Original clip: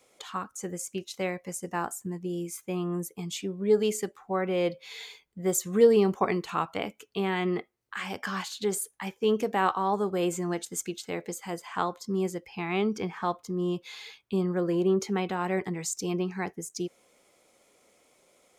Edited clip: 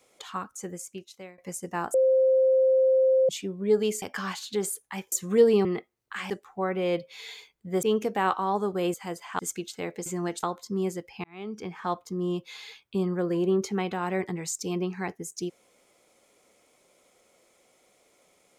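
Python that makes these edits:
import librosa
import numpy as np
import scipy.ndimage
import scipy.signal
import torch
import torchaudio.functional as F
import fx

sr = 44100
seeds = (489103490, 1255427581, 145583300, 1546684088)

y = fx.edit(x, sr, fx.fade_out_to(start_s=0.52, length_s=0.86, floor_db=-23.0),
    fx.bleep(start_s=1.94, length_s=1.35, hz=524.0, db=-17.5),
    fx.swap(start_s=4.02, length_s=1.53, other_s=8.11, other_length_s=1.1),
    fx.cut(start_s=6.08, length_s=1.38),
    fx.swap(start_s=10.32, length_s=0.37, other_s=11.36, other_length_s=0.45),
    fx.fade_in_span(start_s=12.62, length_s=0.69), tone=tone)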